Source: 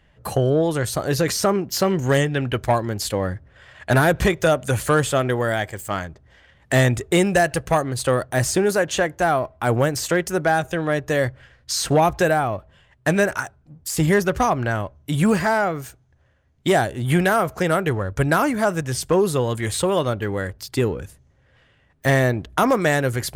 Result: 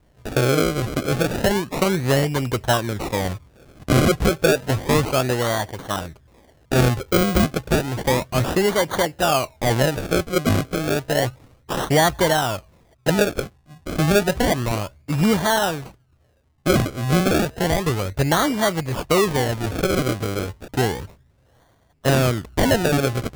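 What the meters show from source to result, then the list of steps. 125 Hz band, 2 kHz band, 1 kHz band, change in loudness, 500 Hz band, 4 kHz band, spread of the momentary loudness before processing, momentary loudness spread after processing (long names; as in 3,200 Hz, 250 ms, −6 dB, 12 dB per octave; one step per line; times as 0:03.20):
+0.5 dB, −2.0 dB, −1.0 dB, 0.0 dB, −0.5 dB, +3.5 dB, 9 LU, 9 LU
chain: sample-and-hold swept by an LFO 33×, swing 100% 0.31 Hz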